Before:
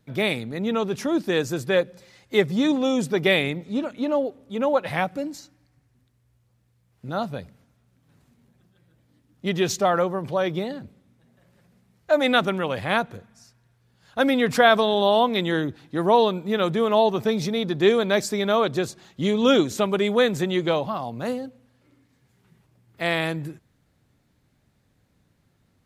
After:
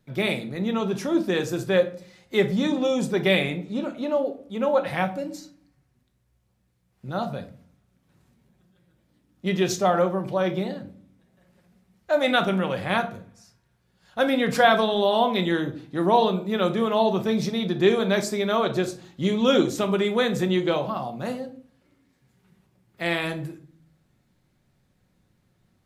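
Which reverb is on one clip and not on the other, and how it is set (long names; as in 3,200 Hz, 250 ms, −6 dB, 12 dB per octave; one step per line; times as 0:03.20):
rectangular room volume 380 cubic metres, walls furnished, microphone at 1 metre
level −2.5 dB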